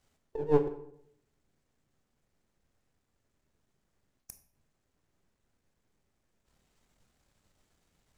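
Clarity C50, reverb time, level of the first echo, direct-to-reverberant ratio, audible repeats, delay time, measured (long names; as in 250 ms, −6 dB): 11.0 dB, 0.70 s, no echo audible, 8.0 dB, no echo audible, no echo audible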